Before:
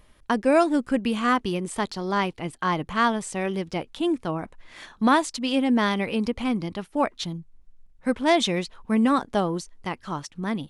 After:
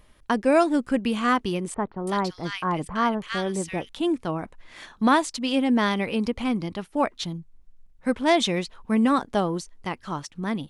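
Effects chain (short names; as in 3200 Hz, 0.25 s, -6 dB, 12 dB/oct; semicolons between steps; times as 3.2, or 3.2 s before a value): 1.74–3.89 bands offset in time lows, highs 0.33 s, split 1600 Hz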